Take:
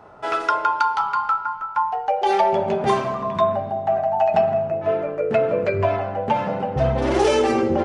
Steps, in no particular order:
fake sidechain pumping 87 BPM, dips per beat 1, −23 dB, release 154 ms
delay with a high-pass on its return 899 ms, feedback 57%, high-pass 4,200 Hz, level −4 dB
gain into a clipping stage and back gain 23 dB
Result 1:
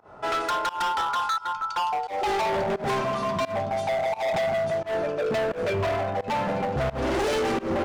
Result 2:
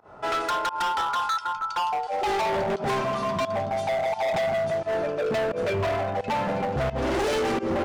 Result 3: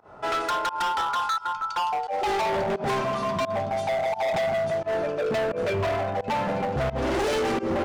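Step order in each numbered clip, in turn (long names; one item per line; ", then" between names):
delay with a high-pass on its return, then gain into a clipping stage and back, then fake sidechain pumping
fake sidechain pumping, then delay with a high-pass on its return, then gain into a clipping stage and back
delay with a high-pass on its return, then fake sidechain pumping, then gain into a clipping stage and back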